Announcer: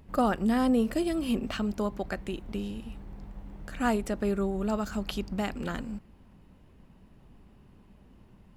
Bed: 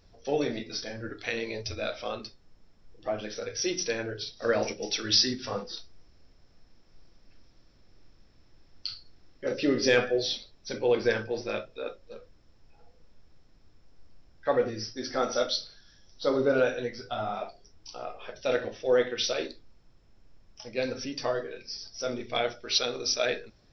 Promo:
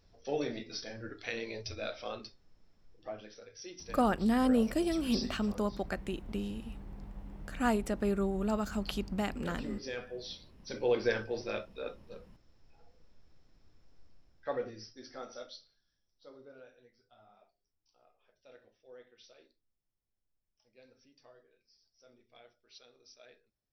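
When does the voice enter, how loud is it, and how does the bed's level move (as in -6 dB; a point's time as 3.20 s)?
3.80 s, -2.5 dB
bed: 2.84 s -6 dB
3.48 s -17.5 dB
10.06 s -17.5 dB
10.82 s -4.5 dB
13.98 s -4.5 dB
16.55 s -30 dB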